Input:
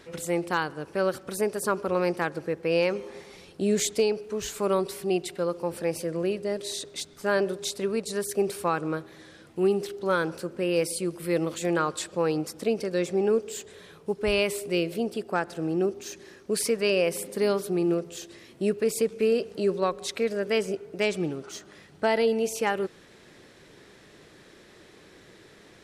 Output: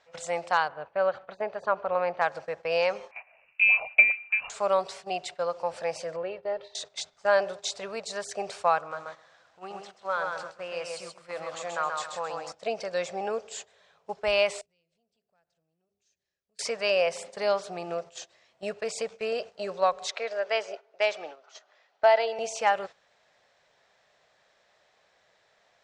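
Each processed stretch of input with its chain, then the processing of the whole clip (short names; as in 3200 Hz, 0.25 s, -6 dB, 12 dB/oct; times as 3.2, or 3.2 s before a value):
0.68–2.21 air absorption 300 m + notch 5300 Hz, Q 5.1
3.11–4.5 transient shaper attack +7 dB, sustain -4 dB + air absorption 82 m + inverted band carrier 2800 Hz
6.16–6.75 air absorption 380 m + comb 2.2 ms, depth 52%
8.78–12.52 bell 1200 Hz +6.5 dB 0.95 oct + compressor 1.5:1, threshold -43 dBFS + lo-fi delay 0.132 s, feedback 35%, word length 9-bit, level -3.5 dB
14.61–16.59 passive tone stack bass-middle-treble 10-0-1 + notches 50/100/150/200/250/300/350/400/450 Hz + compressor 4:1, threshold -52 dBFS
20.11–22.39 HPF 210 Hz 24 dB/oct + three-band isolator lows -15 dB, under 300 Hz, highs -22 dB, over 6600 Hz
whole clip: resonant low shelf 470 Hz -11.5 dB, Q 3; gate -40 dBFS, range -12 dB; steep low-pass 7600 Hz 36 dB/oct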